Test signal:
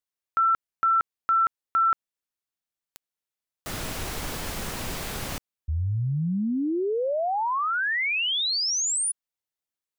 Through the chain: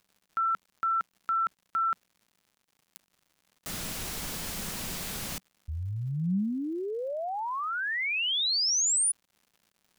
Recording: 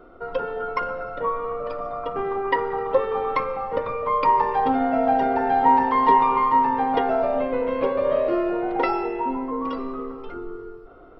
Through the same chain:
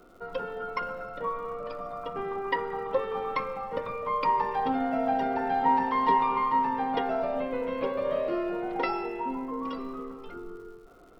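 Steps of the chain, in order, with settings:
high-shelf EQ 2,600 Hz +9 dB
surface crackle 200 per second −44 dBFS
parametric band 190 Hz +7.5 dB 0.56 octaves
level −8 dB

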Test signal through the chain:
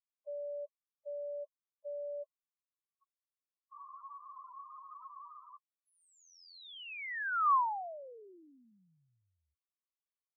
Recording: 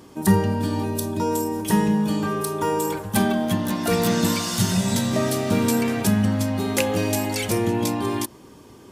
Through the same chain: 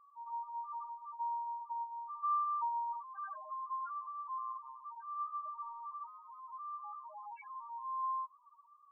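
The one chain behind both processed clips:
brickwall limiter −17 dBFS
four-pole ladder band-pass 1,200 Hz, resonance 70%
spectral peaks only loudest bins 2
level +2.5 dB

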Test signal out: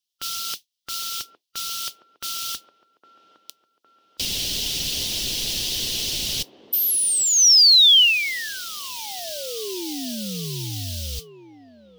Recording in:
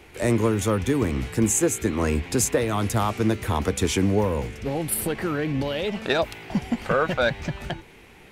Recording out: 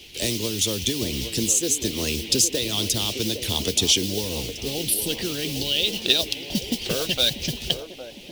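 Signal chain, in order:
noise that follows the level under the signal 17 dB
drawn EQ curve 410 Hz 0 dB, 1,300 Hz −14 dB, 3,000 Hz +8 dB
downward compressor 2.5 to 1, threshold −22 dBFS
harmonic and percussive parts rebalanced harmonic −6 dB
flat-topped bell 4,100 Hz +8.5 dB 1.3 octaves
on a send: delay with a band-pass on its return 810 ms, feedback 53%, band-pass 550 Hz, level −8 dB
on the sum: level +1 dB

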